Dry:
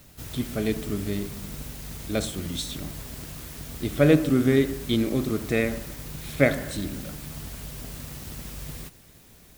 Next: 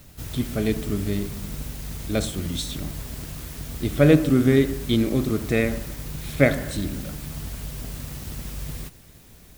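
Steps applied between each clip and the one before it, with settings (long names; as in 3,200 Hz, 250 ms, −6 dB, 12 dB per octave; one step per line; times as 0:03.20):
low-shelf EQ 130 Hz +5.5 dB
level +1.5 dB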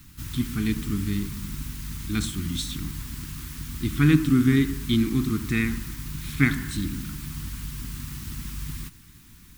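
Chebyshev band-stop filter 290–1,100 Hz, order 2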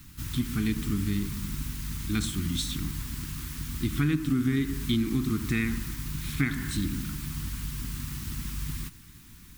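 downward compressor 4 to 1, threshold −23 dBFS, peak gain reduction 10 dB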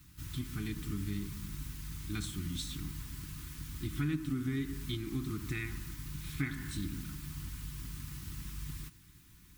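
notch comb filter 230 Hz
level −7.5 dB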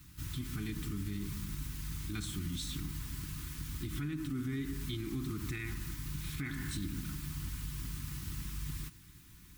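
brickwall limiter −32 dBFS, peak gain reduction 9 dB
level +2.5 dB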